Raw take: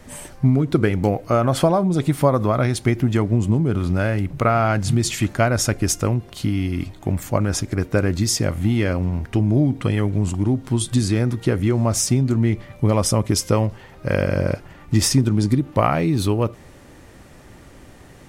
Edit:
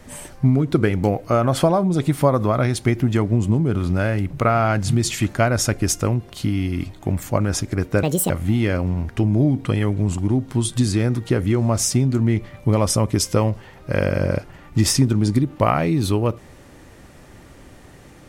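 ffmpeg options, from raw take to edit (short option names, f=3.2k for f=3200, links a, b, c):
-filter_complex "[0:a]asplit=3[a][b][c];[a]atrim=end=8.034[d];[b]atrim=start=8.03:end=8.46,asetpts=PTS-STARTPTS,asetrate=70560,aresample=44100[e];[c]atrim=start=8.456[f];[d][e]acrossfade=d=0.004:c1=hsin:c2=hsin[g];[g][f]acrossfade=d=0.004:c1=hsin:c2=hsin"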